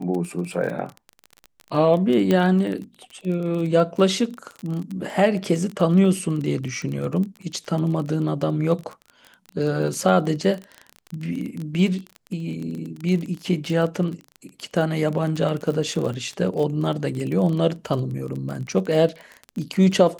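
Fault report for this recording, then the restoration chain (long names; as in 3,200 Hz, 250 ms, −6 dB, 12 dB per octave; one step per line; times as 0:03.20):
surface crackle 25 per second −27 dBFS
0:02.31: click −9 dBFS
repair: click removal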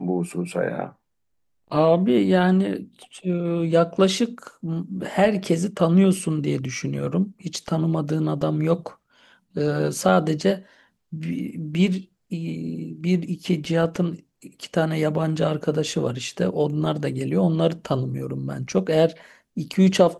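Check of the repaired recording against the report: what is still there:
none of them is left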